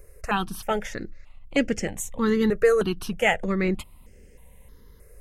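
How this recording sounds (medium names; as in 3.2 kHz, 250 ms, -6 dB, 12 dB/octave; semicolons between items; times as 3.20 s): notches that jump at a steady rate 3.2 Hz 900–3800 Hz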